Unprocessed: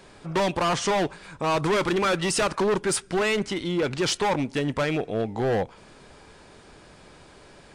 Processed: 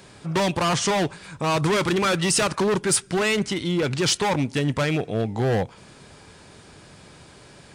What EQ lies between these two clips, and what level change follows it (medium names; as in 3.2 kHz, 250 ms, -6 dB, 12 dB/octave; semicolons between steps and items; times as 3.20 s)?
tilt EQ +2 dB/octave; peaking EQ 110 Hz +13.5 dB 2.3 oct; 0.0 dB